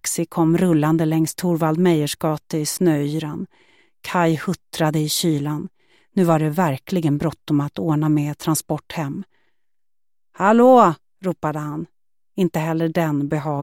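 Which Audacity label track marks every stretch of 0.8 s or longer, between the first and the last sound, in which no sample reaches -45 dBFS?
9.230000	10.350000	silence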